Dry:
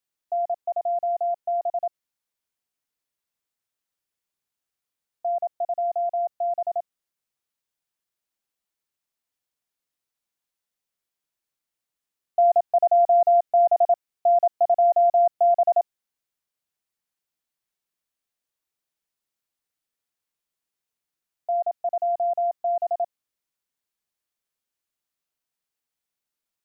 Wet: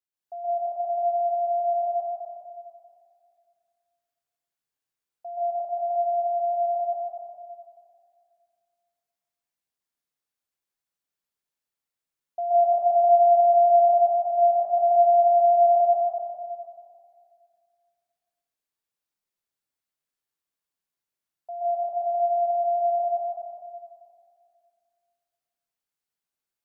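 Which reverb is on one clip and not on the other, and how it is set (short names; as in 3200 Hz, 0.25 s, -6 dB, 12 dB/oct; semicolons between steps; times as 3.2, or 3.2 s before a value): plate-style reverb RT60 2.2 s, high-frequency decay 0.65×, pre-delay 0.115 s, DRR -8.5 dB; gain -11.5 dB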